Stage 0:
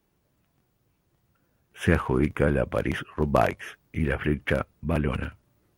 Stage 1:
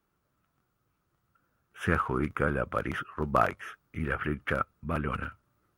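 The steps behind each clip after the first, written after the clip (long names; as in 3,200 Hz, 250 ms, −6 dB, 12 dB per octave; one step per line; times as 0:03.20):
parametric band 1,300 Hz +13.5 dB 0.49 octaves
level −7 dB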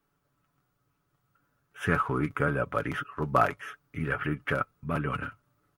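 comb filter 7 ms, depth 54%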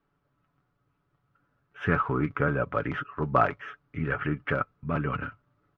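high-frequency loss of the air 230 metres
level +2 dB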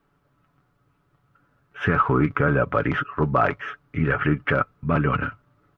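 brickwall limiter −16 dBFS, peak gain reduction 7.5 dB
level +8 dB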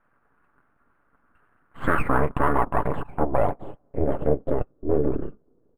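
full-wave rectification
low-pass filter sweep 1,500 Hz → 420 Hz, 0:01.61–0:05.09
linearly interpolated sample-rate reduction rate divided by 4×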